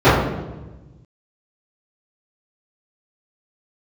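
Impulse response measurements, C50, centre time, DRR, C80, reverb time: 1.0 dB, 68 ms, −18.0 dB, 4.0 dB, 1.1 s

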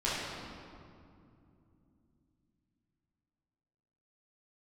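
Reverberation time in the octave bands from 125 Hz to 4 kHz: 4.5, 4.5, 2.9, 2.3, 1.8, 1.4 seconds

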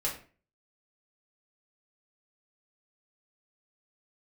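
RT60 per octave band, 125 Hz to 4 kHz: 0.50, 0.45, 0.40, 0.35, 0.40, 0.30 seconds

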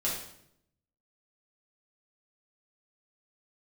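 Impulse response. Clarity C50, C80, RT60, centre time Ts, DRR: 3.0 dB, 6.5 dB, 0.75 s, 44 ms, −6.5 dB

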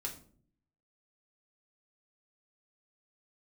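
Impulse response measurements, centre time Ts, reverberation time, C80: 16 ms, 0.50 s, 15.5 dB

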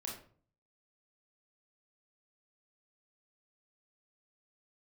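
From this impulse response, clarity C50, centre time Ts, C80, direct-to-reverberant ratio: 4.5 dB, 34 ms, 9.5 dB, −2.0 dB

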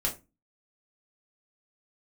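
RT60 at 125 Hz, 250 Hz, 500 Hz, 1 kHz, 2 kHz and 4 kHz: 0.40, 0.40, 0.25, 0.25, 0.20, 0.20 seconds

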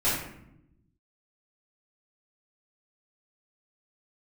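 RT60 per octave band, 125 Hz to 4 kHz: 1.5, 1.3, 0.90, 0.70, 0.65, 0.50 seconds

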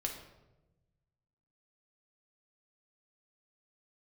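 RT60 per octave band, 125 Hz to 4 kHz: 1.9, 1.5, 1.2, 0.90, 0.75, 0.65 seconds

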